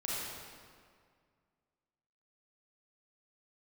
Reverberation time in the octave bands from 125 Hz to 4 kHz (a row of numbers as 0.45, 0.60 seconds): 2.3, 2.2, 2.0, 2.0, 1.7, 1.4 seconds